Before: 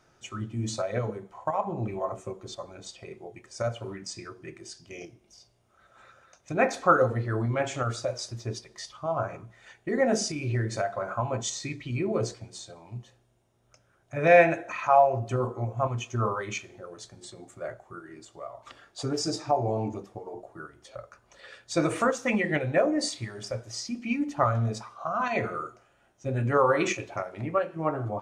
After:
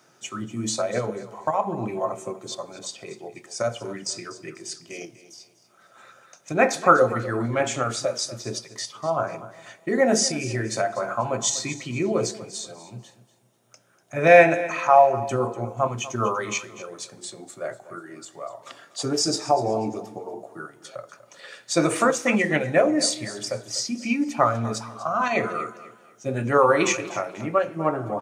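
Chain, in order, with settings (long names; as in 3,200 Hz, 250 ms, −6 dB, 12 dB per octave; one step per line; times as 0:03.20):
high-pass filter 140 Hz 24 dB per octave
high-shelf EQ 6,600 Hz +10 dB
repeating echo 244 ms, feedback 31%, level −16 dB
level +4.5 dB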